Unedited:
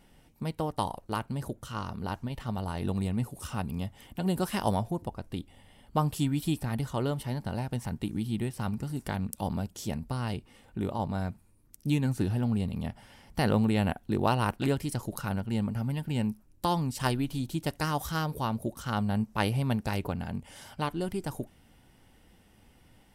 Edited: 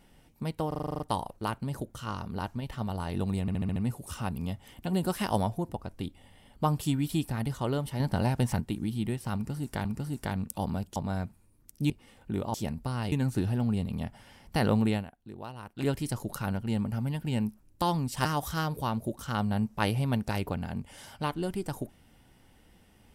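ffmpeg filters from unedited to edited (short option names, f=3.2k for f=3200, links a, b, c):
-filter_complex "[0:a]asplit=24[a][b][c][d][e][f][g][h][i][j][k][l][m][n][o][p][q][r][s][t][u][v][w][x];[a]atrim=end=0.722[y];[b]atrim=start=0.678:end=0.722[z];[c]atrim=start=0.678:end=0.722[aa];[d]atrim=start=0.678:end=0.722[ab];[e]atrim=start=0.678:end=0.722[ac];[f]atrim=start=0.678:end=0.722[ad];[g]atrim=start=0.678:end=0.722[ae];[h]atrim=start=0.678:end=0.722[af];[i]atrim=start=0.678:end=3.162[ag];[j]atrim=start=3.088:end=3.162[ah];[k]atrim=start=3.088:end=3.162[ai];[l]atrim=start=3.088:end=3.162[aj];[m]atrim=start=3.088:end=3.162[ak];[n]atrim=start=3.088:end=7.332[al];[o]atrim=start=7.328:end=7.932,asetpts=PTS-STARTPTS,volume=6dB[am];[p]atrim=start=7.928:end=9.182[an];[q]atrim=start=8.678:end=9.792[ao];[r]atrim=start=11.008:end=11.952[ap];[s]atrim=start=10.368:end=11.012[aq];[t]atrim=start=9.788:end=10.372[ar];[u]atrim=start=11.948:end=13.88,asetpts=PTS-STARTPTS,afade=t=out:st=1.782:d=0.15:silence=0.158489[as];[v]atrim=start=13.88:end=14.57,asetpts=PTS-STARTPTS,volume=-16dB[at];[w]atrim=start=14.57:end=17.082,asetpts=PTS-STARTPTS,afade=t=in:d=0.15:silence=0.158489[au];[x]atrim=start=17.828[av];[y][z]acrossfade=d=0.004:c1=hsin:c2=hsin[aw];[aw][aa]acrossfade=d=0.004:c1=hsin:c2=hsin[ax];[ax][ab]acrossfade=d=0.004:c1=hsin:c2=hsin[ay];[ay][ac]acrossfade=d=0.004:c1=hsin:c2=hsin[az];[az][ad]acrossfade=d=0.004:c1=hsin:c2=hsin[ba];[ba][ae]acrossfade=d=0.004:c1=hsin:c2=hsin[bb];[bb][af]acrossfade=d=0.004:c1=hsin:c2=hsin[bc];[bc][ag]acrossfade=d=0.004:c1=hsin:c2=hsin[bd];[bd][ah]acrossfade=d=0.004:c1=hsin:c2=hsin[be];[be][ai]acrossfade=d=0.004:c1=hsin:c2=hsin[bf];[bf][aj]acrossfade=d=0.004:c1=hsin:c2=hsin[bg];[bg][ak]acrossfade=d=0.004:c1=hsin:c2=hsin[bh];[bh][al]acrossfade=d=0.004:c1=hsin:c2=hsin[bi];[bi][am]acrossfade=d=0.004:c1=hsin:c2=hsin[bj];[bj][an]acrossfade=d=0.004:c1=hsin:c2=hsin[bk];[bk][ao]acrossfade=d=0.004:c1=hsin:c2=hsin[bl];[bl][ap]acrossfade=d=0.004:c1=hsin:c2=hsin[bm];[bm][aq]acrossfade=d=0.004:c1=hsin:c2=hsin[bn];[bn][ar]acrossfade=d=0.004:c1=hsin:c2=hsin[bo];[as][at][au]concat=n=3:v=0:a=1[bp];[bo][bp]acrossfade=d=0.004:c1=hsin:c2=hsin[bq];[bq][av]acrossfade=d=0.004:c1=hsin:c2=hsin"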